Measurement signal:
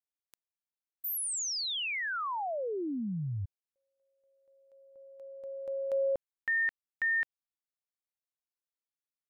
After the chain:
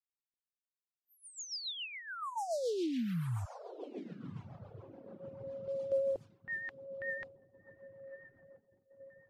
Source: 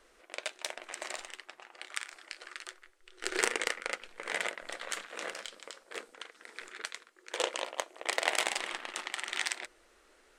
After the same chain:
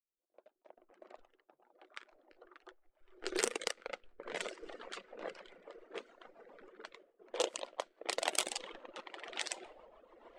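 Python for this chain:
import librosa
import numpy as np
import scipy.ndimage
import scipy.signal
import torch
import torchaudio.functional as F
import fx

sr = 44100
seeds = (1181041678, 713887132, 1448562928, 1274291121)

y = fx.fade_in_head(x, sr, length_s=2.39)
y = fx.echo_diffused(y, sr, ms=1199, feedback_pct=47, wet_db=-9.5)
y = fx.dereverb_blind(y, sr, rt60_s=1.7)
y = fx.gate_hold(y, sr, open_db=-48.0, close_db=-52.0, hold_ms=13.0, range_db=-13, attack_ms=11.0, release_ms=111.0)
y = fx.peak_eq(y, sr, hz=1900.0, db=-9.5, octaves=1.2)
y = fx.rotary(y, sr, hz=7.0)
y = fx.env_lowpass(y, sr, base_hz=790.0, full_db=-35.0)
y = F.gain(torch.from_numpy(y), 2.5).numpy()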